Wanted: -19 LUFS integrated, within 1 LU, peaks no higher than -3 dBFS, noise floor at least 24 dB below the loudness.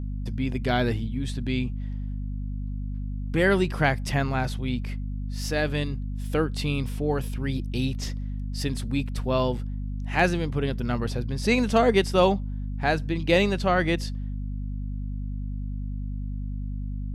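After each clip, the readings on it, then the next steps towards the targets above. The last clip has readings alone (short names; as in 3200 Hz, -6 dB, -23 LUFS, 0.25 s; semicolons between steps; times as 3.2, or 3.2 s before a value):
hum 50 Hz; harmonics up to 250 Hz; hum level -28 dBFS; loudness -27.0 LUFS; peak -8.0 dBFS; loudness target -19.0 LUFS
-> notches 50/100/150/200/250 Hz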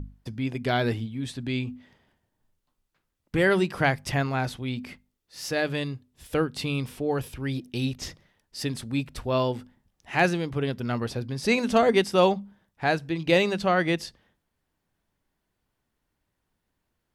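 hum none; loudness -26.5 LUFS; peak -8.5 dBFS; loudness target -19.0 LUFS
-> gain +7.5 dB; limiter -3 dBFS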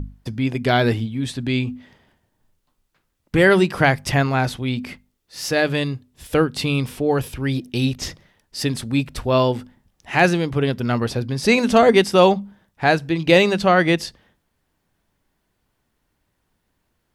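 loudness -19.5 LUFS; peak -3.0 dBFS; noise floor -72 dBFS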